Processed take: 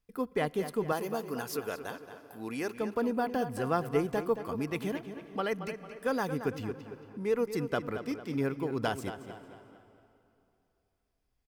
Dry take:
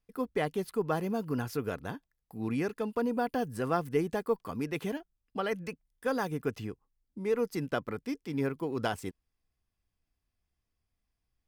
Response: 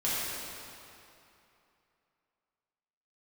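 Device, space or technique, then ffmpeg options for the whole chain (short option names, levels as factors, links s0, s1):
ducked reverb: -filter_complex "[0:a]asplit=3[s0][s1][s2];[1:a]atrim=start_sample=2205[s3];[s1][s3]afir=irnorm=-1:irlink=0[s4];[s2]apad=whole_len=505920[s5];[s4][s5]sidechaincompress=threshold=0.00562:ratio=4:attack=35:release=257,volume=0.0944[s6];[s0][s6]amix=inputs=2:normalize=0,asettb=1/sr,asplit=3[s7][s8][s9];[s7]atrim=end=0.924[s10];[s8]atrim=start=0.92:end=2.76,asetpts=PTS-STARTPTS,afade=t=in:d=0.004:c=qsin,afade=t=out:st=1.836:d=0.004:c=qsin,bass=f=250:g=-13,treble=f=4000:g=6[s11];[s9]atrim=start=2.756[s12];[s10][s11]acrossfade=d=0.004:c1=hsin:c2=qsin[s13];[s13][s12]acrossfade=d=0.004:c1=qsin:c2=hsin,asplit=2[s14][s15];[s15]adelay=225,lowpass=f=4600:p=1,volume=0.316,asplit=2[s16][s17];[s17]adelay=225,lowpass=f=4600:p=1,volume=0.45,asplit=2[s18][s19];[s19]adelay=225,lowpass=f=4600:p=1,volume=0.45,asplit=2[s20][s21];[s21]adelay=225,lowpass=f=4600:p=1,volume=0.45,asplit=2[s22][s23];[s23]adelay=225,lowpass=f=4600:p=1,volume=0.45[s24];[s14][s16][s18][s20][s22][s24]amix=inputs=6:normalize=0"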